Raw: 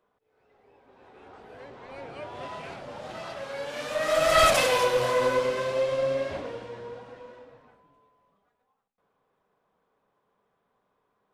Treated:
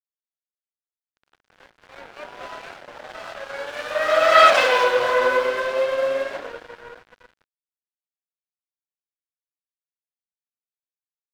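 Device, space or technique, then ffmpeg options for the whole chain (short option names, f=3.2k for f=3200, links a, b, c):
pocket radio on a weak battery: -af "highpass=400,lowpass=4.1k,aeval=exprs='sgn(val(0))*max(abs(val(0))-0.00708,0)':c=same,equalizer=f=1.5k:t=o:w=0.42:g=6,volume=6.5dB"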